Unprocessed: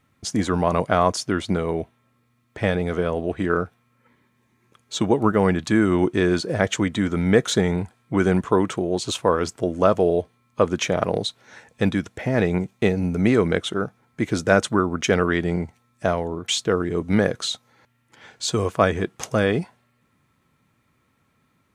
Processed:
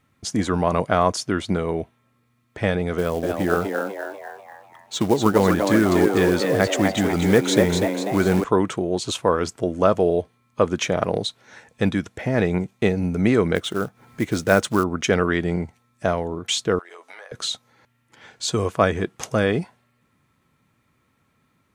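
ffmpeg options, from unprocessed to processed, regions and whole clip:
-filter_complex "[0:a]asettb=1/sr,asplit=3[a][b][c];[a]atrim=end=2.984[d];[b]atrim=start=2.98:end=8.44,asetpts=PTS-STARTPTS,afade=t=in:d=0.004:c=qsin,afade=t=out:st=5.456:d=0.004:c=qsin,acrusher=bits=5:mode=log:mix=0:aa=0.000001,asplit=7[e][f][g][h][i][j][k];[f]adelay=246,afreqshift=99,volume=-4.5dB[l];[g]adelay=492,afreqshift=198,volume=-10.5dB[m];[h]adelay=738,afreqshift=297,volume=-16.5dB[n];[i]adelay=984,afreqshift=396,volume=-22.6dB[o];[j]adelay=1230,afreqshift=495,volume=-28.6dB[p];[k]adelay=1476,afreqshift=594,volume=-34.6dB[q];[e][l][m][n][o][p][q]amix=inputs=7:normalize=0,atrim=end_sample=240786[r];[c]atrim=start=8.436[s];[d][r]acrossfade=d=0.004:c1=hsin:c2=qsin[t];[t][s]acrossfade=d=0.004:c1=qsin:c2=hsin,asettb=1/sr,asplit=3[u][v][w];[u]atrim=end=13.554[x];[v]atrim=start=13.55:end=14.84,asetpts=PTS-STARTPTS,afade=t=in:d=0.004:c=qsin,afade=t=out:st=1.286:d=0.004:c=qsin,acrusher=bits=5:mode=log:mix=0:aa=0.000001,acompressor=mode=upward:threshold=-37dB:ratio=2.5:attack=3.2:release=140:knee=2.83:detection=peak[y];[w]atrim=start=14.836[z];[x][y]acrossfade=d=0.004:c1=hsin:c2=qsin[aa];[aa][z]acrossfade=d=0.004:c1=qsin:c2=hsin,asettb=1/sr,asplit=3[ab][ac][ad];[ab]atrim=end=16.794[ae];[ac]atrim=start=16.79:end=17.32,asetpts=PTS-STARTPTS,afade=t=in:d=0.004:c=qsin,afade=t=out:st=0.526:d=0.004:c=qsin,highpass=f=670:w=0.5412,highpass=f=670:w=1.3066,asplit=2[af][ag];[ag]adelay=12,volume=-4dB[ah];[af][ah]amix=inputs=2:normalize=0,atrim=end_sample=23373,acompressor=threshold=-38dB:ratio=8:attack=3.2:release=140:knee=1:detection=peak[ai];[ad]atrim=start=17.316[aj];[ae][ai]acrossfade=d=0.004:c1=hsin:c2=qsin[ak];[ak][aj]acrossfade=d=0.004:c1=qsin:c2=hsin"

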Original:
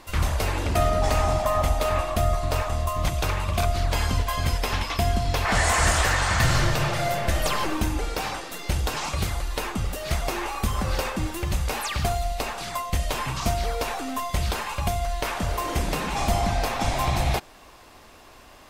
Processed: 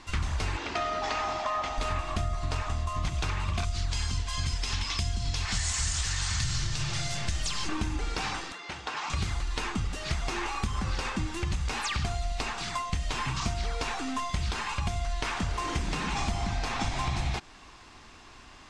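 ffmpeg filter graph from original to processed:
-filter_complex "[0:a]asettb=1/sr,asplit=3[a][b][c];[a]atrim=end=0.574[d];[b]atrim=start=0.57:end=1.78,asetpts=PTS-STARTPTS,afade=t=in:d=0.004:c=qsin,afade=t=out:st=1.206:d=0.004:c=qsin,acrossover=split=7600[e][f];[f]acompressor=threshold=-48dB:ratio=4:attack=1:release=60[g];[e][g]amix=inputs=2:normalize=0,acrossover=split=300 6800:gain=0.0891 1 0.126[h][i][j];[h][i][j]amix=inputs=3:normalize=0[k];[c]atrim=start=1.776[l];[d][k]acrossfade=d=0.004:c1=hsin:c2=qsin[m];[m][l]acrossfade=d=0.004:c1=qsin:c2=hsin,asettb=1/sr,asplit=3[n][o][p];[n]atrim=end=3.644[q];[o]atrim=start=3.64:end=7.69,asetpts=PTS-STARTPTS,afade=t=in:d=0.004:c=qsin,afade=t=out:st=4.046:d=0.004:c=qsin,lowpass=7.9k,aemphasis=mode=production:type=50kf,acrossover=split=160|3000[r][s][t];[s]acompressor=threshold=-32dB:ratio=6:attack=3.2:release=140:knee=2.83:detection=peak[u];[r][u][t]amix=inputs=3:normalize=0[v];[p]atrim=start=7.686[w];[q][v]acrossfade=d=0.004:c1=hsin:c2=qsin[x];[x][w]acrossfade=d=0.004:c1=qsin:c2=hsin,asettb=1/sr,asplit=3[y][z][aa];[y]atrim=end=8.524[ab];[z]atrim=start=8.52:end=9.1,asetpts=PTS-STARTPTS,afade=t=in:d=0.004:c=qsin,afade=t=out:st=0.576:d=0.004:c=qsin,highpass=680,aemphasis=mode=reproduction:type=riaa[ac];[aa]atrim=start=9.096[ad];[ab][ac]acrossfade=d=0.004:c1=hsin:c2=qsin[ae];[ae][ad]acrossfade=d=0.004:c1=qsin:c2=hsin,lowpass=f=7.8k:w=0.5412,lowpass=f=7.8k:w=1.3066,equalizer=f=560:w=1.8:g=-10.5,acompressor=threshold=-26dB:ratio=6"

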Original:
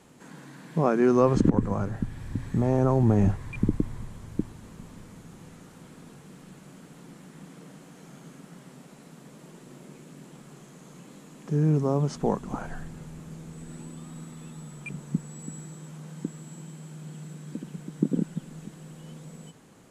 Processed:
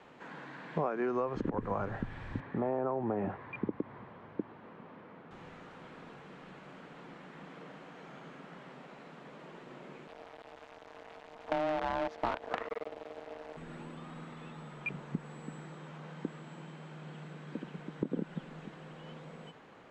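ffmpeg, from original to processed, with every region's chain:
-filter_complex "[0:a]asettb=1/sr,asplit=3[a][b][c];[a]atrim=end=2.404[d];[b]atrim=start=2.4:end=5.31,asetpts=PTS-STARTPTS,afade=t=in:d=0.004:c=qsin,afade=t=out:st=2.906:d=0.004:c=qsin,highpass=180,lowpass=4.2k,highshelf=f=2.5k:g=-11.5[e];[c]atrim=start=5.306[f];[d][e]acrossfade=d=0.004:c1=hsin:c2=qsin[g];[g][f]acrossfade=d=0.004:c1=qsin:c2=hsin,asettb=1/sr,asplit=3[h][i][j];[h]atrim=end=10.074[k];[i]atrim=start=10.07:end=13.57,asetpts=PTS-STARTPTS,afade=t=in:d=0.004:c=qsin,afade=t=out:st=3.496:d=0.004:c=qsin,acrusher=bits=5:dc=4:mix=0:aa=0.000001,aeval=exprs='val(0)*sin(2*PI*460*n/s)':c=same[l];[j]atrim=start=13.566[m];[k][l]acrossfade=d=0.004:c1=hsin:c2=qsin[n];[n][m]acrossfade=d=0.004:c1=qsin:c2=hsin,lowpass=4.7k,acrossover=split=420 3400:gain=0.251 1 0.2[o][p][q];[o][p][q]amix=inputs=3:normalize=0,acompressor=threshold=-33dB:ratio=16,volume=4.5dB"

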